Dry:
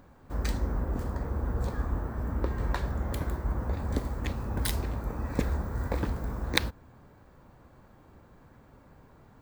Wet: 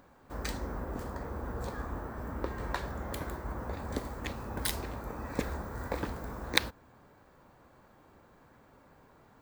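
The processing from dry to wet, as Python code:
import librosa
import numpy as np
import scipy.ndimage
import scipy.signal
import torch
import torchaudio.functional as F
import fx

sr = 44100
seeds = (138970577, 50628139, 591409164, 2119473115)

y = fx.low_shelf(x, sr, hz=210.0, db=-10.5)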